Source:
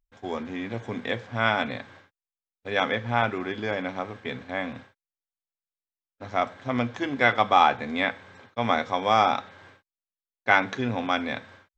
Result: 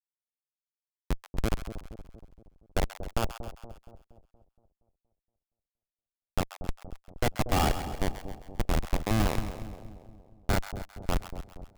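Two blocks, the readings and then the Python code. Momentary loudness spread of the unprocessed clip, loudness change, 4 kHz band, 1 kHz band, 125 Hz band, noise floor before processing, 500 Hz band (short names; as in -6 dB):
14 LU, -7.0 dB, -8.0 dB, -12.5 dB, +2.5 dB, under -85 dBFS, -8.5 dB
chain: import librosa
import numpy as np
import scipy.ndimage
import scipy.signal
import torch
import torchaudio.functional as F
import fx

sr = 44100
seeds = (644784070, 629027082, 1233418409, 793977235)

y = fx.schmitt(x, sr, flips_db=-15.5)
y = fx.echo_split(y, sr, split_hz=790.0, low_ms=235, high_ms=133, feedback_pct=52, wet_db=-10.5)
y = y * 10.0 ** (4.5 / 20.0)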